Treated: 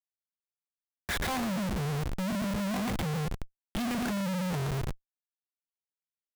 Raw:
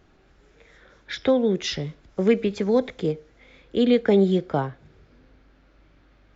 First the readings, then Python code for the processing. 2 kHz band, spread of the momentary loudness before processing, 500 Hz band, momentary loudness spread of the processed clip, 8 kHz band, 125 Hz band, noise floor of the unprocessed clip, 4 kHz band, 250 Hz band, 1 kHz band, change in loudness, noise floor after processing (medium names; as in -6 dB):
-1.0 dB, 13 LU, -17.0 dB, 8 LU, no reading, -1.5 dB, -58 dBFS, -6.0 dB, -8.5 dB, -2.5 dB, -9.5 dB, under -85 dBFS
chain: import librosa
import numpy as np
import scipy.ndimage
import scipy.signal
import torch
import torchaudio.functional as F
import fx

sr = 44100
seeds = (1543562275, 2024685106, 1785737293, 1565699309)

p1 = scipy.signal.sosfilt(scipy.signal.ellip(3, 1.0, 40, [200.0, 670.0], 'bandstop', fs=sr, output='sos'), x)
p2 = fx.peak_eq(p1, sr, hz=300.0, db=12.0, octaves=0.46)
p3 = fx.env_lowpass_down(p2, sr, base_hz=320.0, full_db=-21.5)
p4 = fx.low_shelf(p3, sr, hz=130.0, db=6.5)
p5 = p4 + fx.echo_feedback(p4, sr, ms=115, feedback_pct=28, wet_db=-7, dry=0)
p6 = fx.schmitt(p5, sr, flips_db=-39.0)
y = F.gain(torch.from_numpy(p6), -2.5).numpy()